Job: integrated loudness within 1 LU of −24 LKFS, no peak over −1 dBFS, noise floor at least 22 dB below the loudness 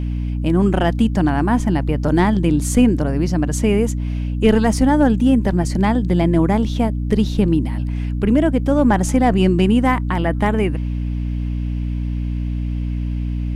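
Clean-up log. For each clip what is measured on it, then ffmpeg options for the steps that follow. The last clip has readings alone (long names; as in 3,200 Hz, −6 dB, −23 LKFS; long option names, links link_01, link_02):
mains hum 60 Hz; hum harmonics up to 300 Hz; level of the hum −19 dBFS; integrated loudness −18.0 LKFS; sample peak −2.5 dBFS; target loudness −24.0 LKFS
→ -af "bandreject=frequency=60:width_type=h:width=4,bandreject=frequency=120:width_type=h:width=4,bandreject=frequency=180:width_type=h:width=4,bandreject=frequency=240:width_type=h:width=4,bandreject=frequency=300:width_type=h:width=4"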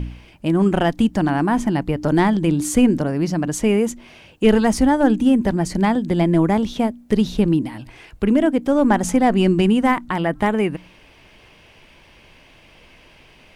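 mains hum none found; integrated loudness −18.5 LKFS; sample peak −3.5 dBFS; target loudness −24.0 LKFS
→ -af "volume=-5.5dB"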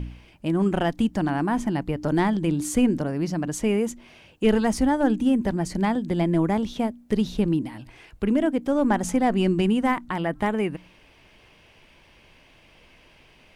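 integrated loudness −24.0 LKFS; sample peak −9.0 dBFS; background noise floor −55 dBFS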